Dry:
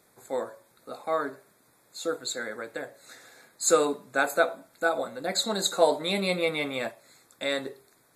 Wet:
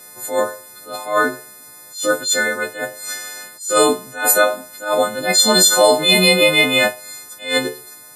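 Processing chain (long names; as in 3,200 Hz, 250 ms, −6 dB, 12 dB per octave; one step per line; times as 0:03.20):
every partial snapped to a pitch grid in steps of 3 semitones
boost into a limiter +14.5 dB
level that may rise only so fast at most 140 dB per second
level −1 dB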